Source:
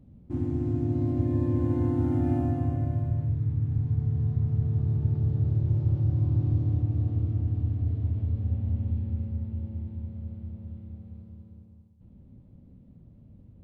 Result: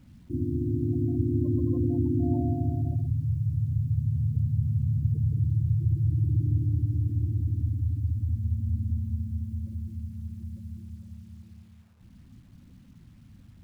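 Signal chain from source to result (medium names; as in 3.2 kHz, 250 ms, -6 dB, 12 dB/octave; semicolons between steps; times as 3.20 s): spectral gate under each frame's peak -20 dB strong; 10.02–10.84 s: peaking EQ 700 Hz -1.5 dB -> +6 dB 2.3 oct; bit crusher 11-bit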